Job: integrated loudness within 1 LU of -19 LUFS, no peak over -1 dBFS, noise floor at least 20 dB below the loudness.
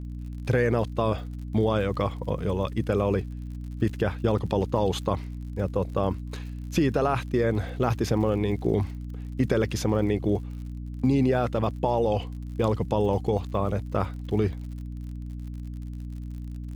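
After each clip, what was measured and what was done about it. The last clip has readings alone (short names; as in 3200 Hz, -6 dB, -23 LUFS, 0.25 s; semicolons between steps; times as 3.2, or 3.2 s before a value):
ticks 56/s; hum 60 Hz; harmonics up to 300 Hz; hum level -33 dBFS; loudness -27.0 LUFS; peak -9.0 dBFS; loudness target -19.0 LUFS
-> de-click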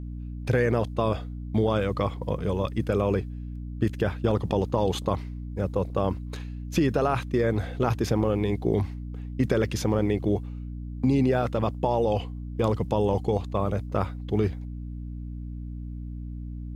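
ticks 0.060/s; hum 60 Hz; harmonics up to 300 Hz; hum level -33 dBFS
-> de-hum 60 Hz, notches 5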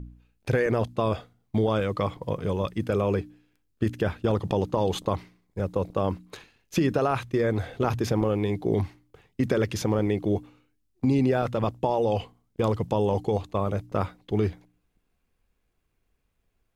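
hum none; loudness -27.0 LUFS; peak -9.5 dBFS; loudness target -19.0 LUFS
-> gain +8 dB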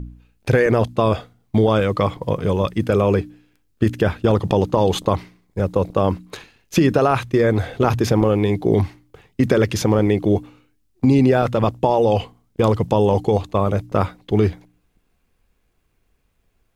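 loudness -19.0 LUFS; peak -1.5 dBFS; noise floor -66 dBFS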